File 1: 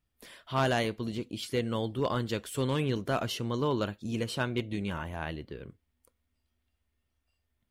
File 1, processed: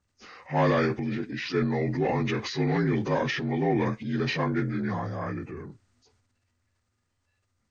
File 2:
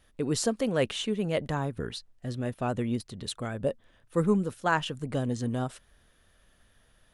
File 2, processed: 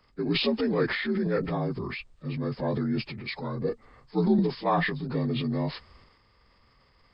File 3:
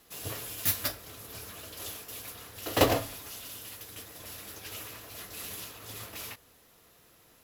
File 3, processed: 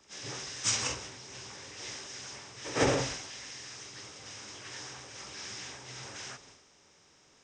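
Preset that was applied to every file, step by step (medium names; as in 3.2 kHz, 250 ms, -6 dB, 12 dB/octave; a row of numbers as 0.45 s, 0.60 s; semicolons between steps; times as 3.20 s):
frequency axis rescaled in octaves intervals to 80%; transient shaper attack -1 dB, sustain +8 dB; peak normalisation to -12 dBFS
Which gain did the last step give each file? +5.0 dB, +2.5 dB, -1.0 dB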